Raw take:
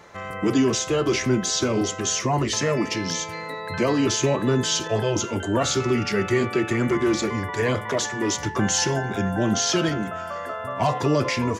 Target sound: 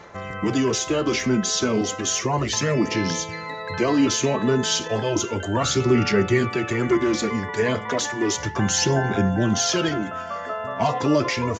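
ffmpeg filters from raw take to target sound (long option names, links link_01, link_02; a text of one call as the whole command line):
ffmpeg -i in.wav -af "aresample=16000,aresample=44100,aphaser=in_gain=1:out_gain=1:delay=4.7:decay=0.4:speed=0.33:type=sinusoidal" out.wav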